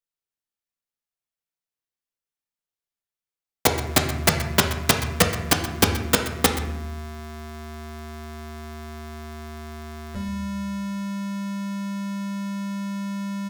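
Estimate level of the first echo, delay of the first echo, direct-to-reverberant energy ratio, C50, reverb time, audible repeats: −13.5 dB, 126 ms, 2.5 dB, 7.0 dB, 0.80 s, 1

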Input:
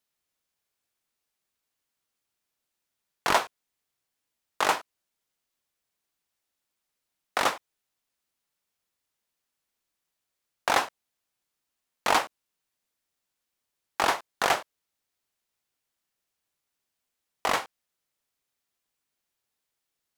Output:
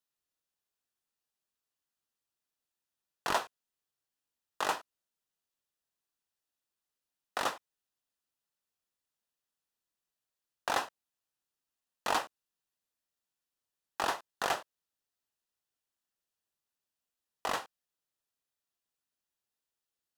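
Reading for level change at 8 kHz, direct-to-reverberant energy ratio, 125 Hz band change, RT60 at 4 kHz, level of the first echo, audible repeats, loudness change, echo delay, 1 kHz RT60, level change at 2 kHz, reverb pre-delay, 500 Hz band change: −7.5 dB, no reverb audible, −7.5 dB, no reverb audible, no echo audible, no echo audible, −8.0 dB, no echo audible, no reverb audible, −8.5 dB, no reverb audible, −7.5 dB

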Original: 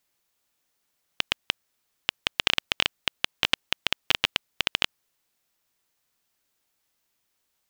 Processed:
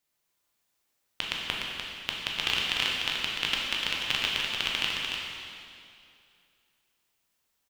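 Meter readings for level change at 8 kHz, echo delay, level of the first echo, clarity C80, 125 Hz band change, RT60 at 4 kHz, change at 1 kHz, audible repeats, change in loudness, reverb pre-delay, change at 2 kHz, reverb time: −1.0 dB, 297 ms, −5.5 dB, −1.0 dB, −0.5 dB, 2.2 s, −1.5 dB, 1, −1.5 dB, 6 ms, −1.0 dB, 2.4 s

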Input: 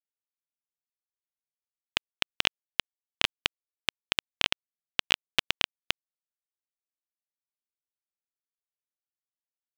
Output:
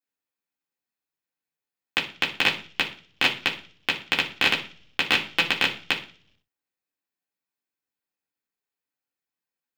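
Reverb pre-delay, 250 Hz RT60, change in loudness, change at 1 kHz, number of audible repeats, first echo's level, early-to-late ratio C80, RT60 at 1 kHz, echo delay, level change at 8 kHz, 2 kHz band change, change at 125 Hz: 3 ms, 0.70 s, +6.0 dB, +7.5 dB, no echo audible, no echo audible, 16.0 dB, 0.40 s, no echo audible, +1.5 dB, +8.5 dB, +6.5 dB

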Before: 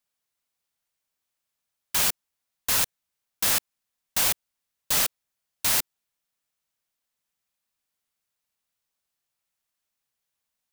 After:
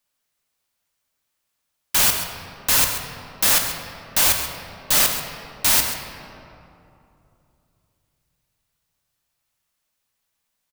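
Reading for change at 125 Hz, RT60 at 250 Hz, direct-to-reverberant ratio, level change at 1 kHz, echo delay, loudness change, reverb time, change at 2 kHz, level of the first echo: +8.5 dB, 3.3 s, 3.0 dB, +7.5 dB, 134 ms, +5.5 dB, 2.8 s, +7.0 dB, −11.5 dB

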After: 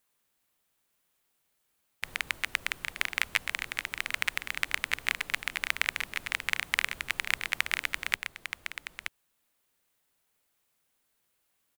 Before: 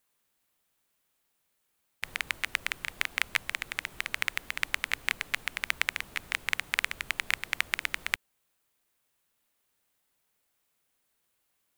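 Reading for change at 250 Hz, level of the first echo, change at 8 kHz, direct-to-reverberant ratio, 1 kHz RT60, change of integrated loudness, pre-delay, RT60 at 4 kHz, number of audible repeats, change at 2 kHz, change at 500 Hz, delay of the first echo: +0.5 dB, −8.0 dB, +0.5 dB, no reverb audible, no reverb audible, 0.0 dB, no reverb audible, no reverb audible, 1, +0.5 dB, +0.5 dB, 925 ms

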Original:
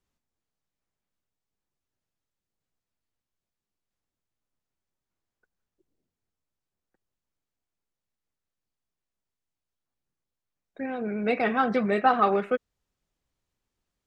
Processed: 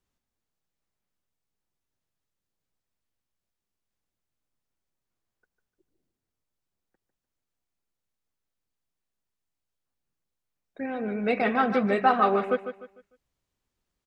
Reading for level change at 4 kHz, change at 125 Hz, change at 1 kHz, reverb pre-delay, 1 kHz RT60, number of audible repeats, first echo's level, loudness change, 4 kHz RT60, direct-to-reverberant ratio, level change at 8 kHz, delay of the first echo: +0.5 dB, +0.5 dB, +0.5 dB, no reverb audible, no reverb audible, 3, −10.0 dB, +0.5 dB, no reverb audible, no reverb audible, can't be measured, 150 ms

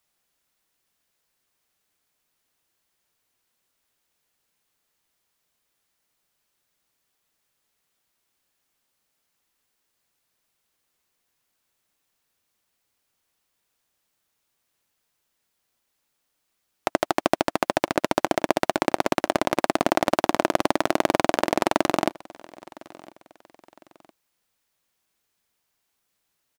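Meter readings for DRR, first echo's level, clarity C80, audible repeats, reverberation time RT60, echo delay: no reverb audible, −23.0 dB, no reverb audible, 2, no reverb audible, 1,008 ms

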